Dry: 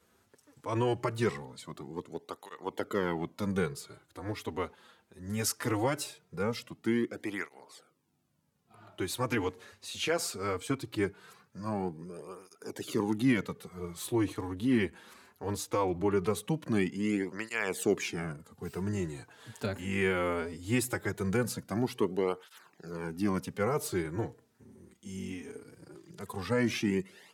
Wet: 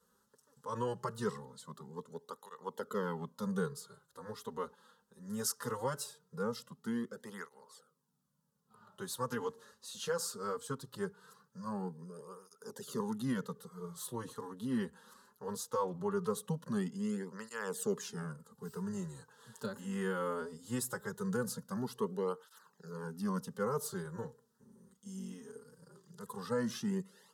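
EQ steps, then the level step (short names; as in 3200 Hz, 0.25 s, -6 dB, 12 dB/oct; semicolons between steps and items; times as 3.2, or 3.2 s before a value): bell 340 Hz -10 dB 0.28 oct; fixed phaser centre 460 Hz, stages 8; -2.5 dB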